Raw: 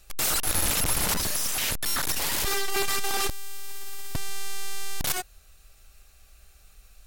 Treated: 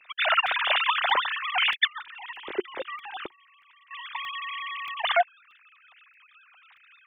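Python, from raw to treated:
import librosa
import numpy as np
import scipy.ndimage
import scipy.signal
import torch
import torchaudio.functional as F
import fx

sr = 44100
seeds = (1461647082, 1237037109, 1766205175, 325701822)

y = fx.sine_speech(x, sr)
y = fx.curve_eq(y, sr, hz=(200.0, 360.0, 620.0), db=(0, 6, -17), at=(1.87, 3.91))
y = fx.buffer_crackle(y, sr, first_s=0.47, period_s=0.63, block=64, kind='zero')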